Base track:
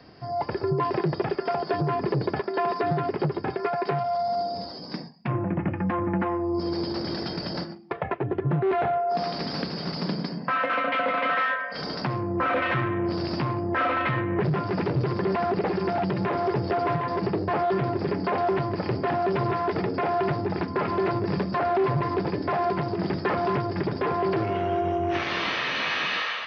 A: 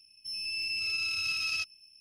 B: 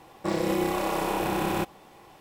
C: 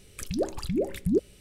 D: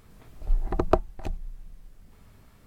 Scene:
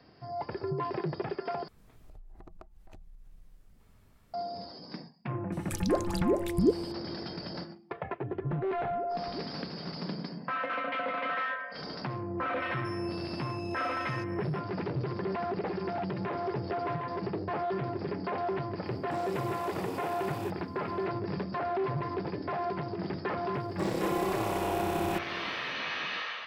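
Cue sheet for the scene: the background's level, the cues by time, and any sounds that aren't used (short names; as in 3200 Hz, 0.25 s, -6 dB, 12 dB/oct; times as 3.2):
base track -8 dB
1.68 replace with D -7.5 dB + compressor 8:1, threshold -39 dBFS
5.52 add C -0.5 dB
8.22 add C -18 dB + LPF 1000 Hz 24 dB/oct
12.6 add A -7 dB + compressor 2.5:1, threshold -46 dBFS
18.86 add B -13 dB + HPF 240 Hz 24 dB/oct
23.54 add B -5.5 dB + crossover distortion -54 dBFS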